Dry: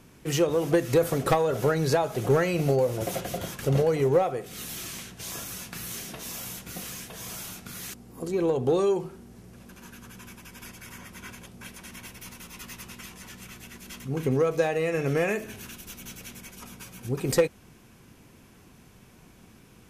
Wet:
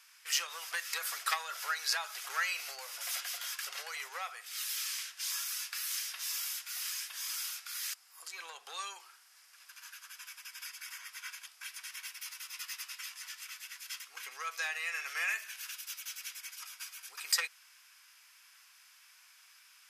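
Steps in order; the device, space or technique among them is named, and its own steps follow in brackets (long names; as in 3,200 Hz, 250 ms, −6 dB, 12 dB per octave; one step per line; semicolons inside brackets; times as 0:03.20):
headphones lying on a table (high-pass filter 1,300 Hz 24 dB per octave; parametric band 5,000 Hz +8 dB 0.21 octaves)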